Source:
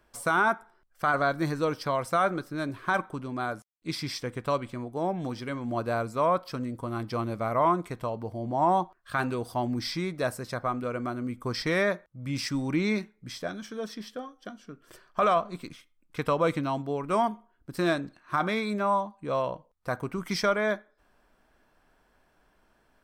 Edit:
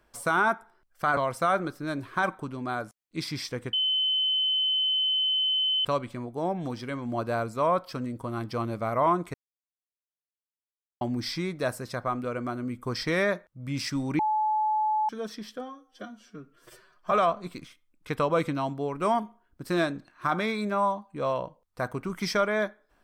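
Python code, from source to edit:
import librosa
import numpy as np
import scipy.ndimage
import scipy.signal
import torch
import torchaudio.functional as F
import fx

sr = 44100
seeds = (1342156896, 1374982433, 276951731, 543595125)

y = fx.edit(x, sr, fx.cut(start_s=1.17, length_s=0.71),
    fx.insert_tone(at_s=4.44, length_s=2.12, hz=3050.0, db=-22.5),
    fx.silence(start_s=7.93, length_s=1.67),
    fx.bleep(start_s=12.78, length_s=0.9, hz=860.0, db=-22.5),
    fx.stretch_span(start_s=14.19, length_s=1.01, factor=1.5), tone=tone)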